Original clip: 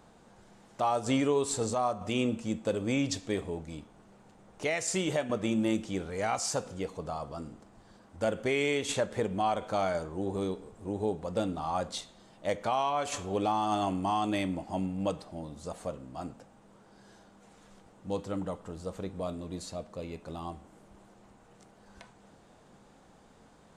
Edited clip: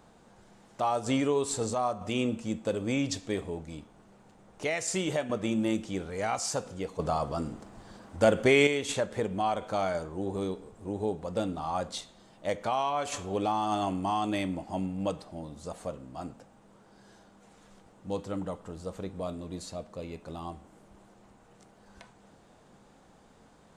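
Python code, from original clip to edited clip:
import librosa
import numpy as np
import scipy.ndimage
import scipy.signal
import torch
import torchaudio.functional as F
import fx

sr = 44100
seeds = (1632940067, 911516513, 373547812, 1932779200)

y = fx.edit(x, sr, fx.clip_gain(start_s=6.99, length_s=1.68, db=7.5), tone=tone)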